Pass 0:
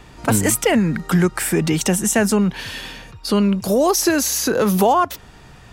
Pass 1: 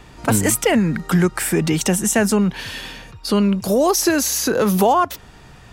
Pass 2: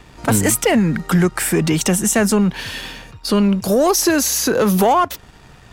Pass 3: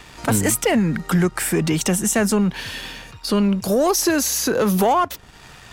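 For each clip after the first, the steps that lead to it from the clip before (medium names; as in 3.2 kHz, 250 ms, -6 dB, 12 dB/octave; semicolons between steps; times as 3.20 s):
no audible change
waveshaping leveller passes 1; trim -1.5 dB
tape noise reduction on one side only encoder only; trim -3 dB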